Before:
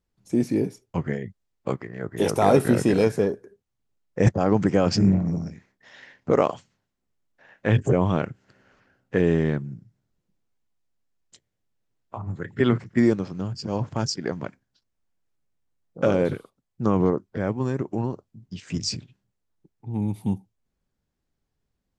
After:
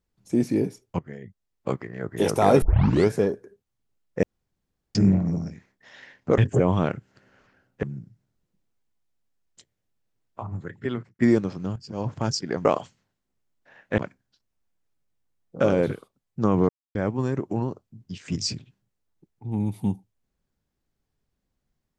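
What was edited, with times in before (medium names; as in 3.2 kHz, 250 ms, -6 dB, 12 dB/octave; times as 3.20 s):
0.99–1.71 s: fade in, from -20 dB
2.62 s: tape start 0.47 s
4.23–4.95 s: room tone
6.38–7.71 s: move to 14.40 s
9.16–9.58 s: delete
12.17–12.94 s: fade out
13.51–13.90 s: fade in, from -13.5 dB
17.11–17.37 s: mute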